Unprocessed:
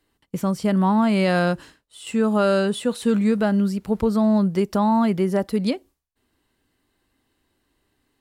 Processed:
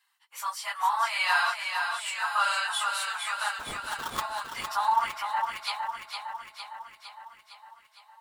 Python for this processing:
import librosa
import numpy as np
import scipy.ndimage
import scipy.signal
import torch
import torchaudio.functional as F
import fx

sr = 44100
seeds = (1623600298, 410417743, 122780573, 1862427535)

y = fx.phase_scramble(x, sr, seeds[0], window_ms=50)
y = scipy.signal.sosfilt(scipy.signal.butter(8, 870.0, 'highpass', fs=sr, output='sos'), y)
y = fx.sample_hold(y, sr, seeds[1], rate_hz=2400.0, jitter_pct=20, at=(3.58, 4.2), fade=0.02)
y = fx.brickwall_lowpass(y, sr, high_hz=3400.0, at=(4.94, 5.57))
y = fx.echo_feedback(y, sr, ms=458, feedback_pct=60, wet_db=-5.5)
y = F.gain(torch.from_numpy(y), 1.5).numpy()